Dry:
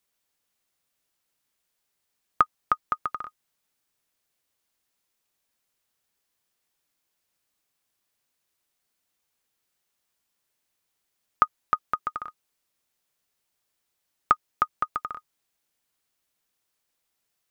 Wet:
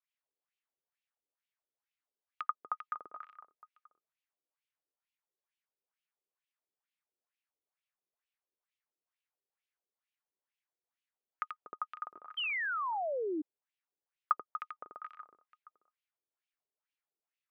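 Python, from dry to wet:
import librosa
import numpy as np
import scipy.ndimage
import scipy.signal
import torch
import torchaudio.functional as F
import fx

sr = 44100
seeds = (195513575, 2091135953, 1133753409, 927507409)

y = fx.echo_multitap(x, sr, ms=(86, 241, 708), db=(-4.5, -11.0, -19.5))
y = fx.wah_lfo(y, sr, hz=2.2, low_hz=380.0, high_hz=2800.0, q=2.7)
y = fx.spec_paint(y, sr, seeds[0], shape='fall', start_s=12.37, length_s=1.05, low_hz=290.0, high_hz=3200.0, level_db=-27.0)
y = y * librosa.db_to_amplitude(-7.5)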